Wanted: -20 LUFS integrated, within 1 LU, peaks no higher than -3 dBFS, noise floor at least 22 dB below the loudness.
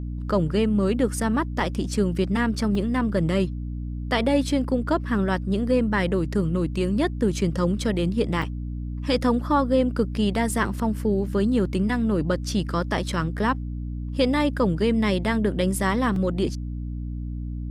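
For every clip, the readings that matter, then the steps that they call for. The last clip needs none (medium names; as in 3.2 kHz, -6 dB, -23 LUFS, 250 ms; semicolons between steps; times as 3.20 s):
dropouts 4; longest dropout 2.5 ms; hum 60 Hz; highest harmonic 300 Hz; hum level -28 dBFS; loudness -24.0 LUFS; peak level -8.5 dBFS; loudness target -20.0 LUFS
-> interpolate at 1.60/2.75/8.42/16.16 s, 2.5 ms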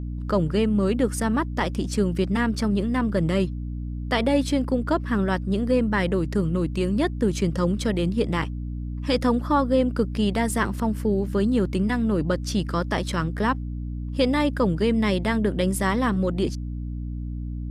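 dropouts 0; hum 60 Hz; highest harmonic 300 Hz; hum level -28 dBFS
-> hum notches 60/120/180/240/300 Hz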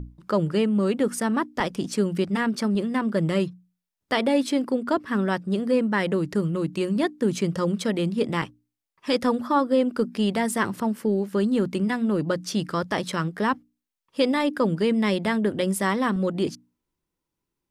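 hum not found; loudness -24.5 LUFS; peak level -10.0 dBFS; loudness target -20.0 LUFS
-> trim +4.5 dB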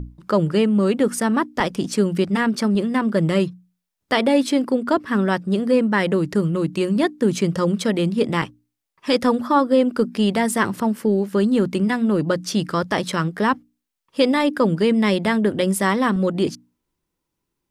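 loudness -20.0 LUFS; peak level -5.5 dBFS; noise floor -80 dBFS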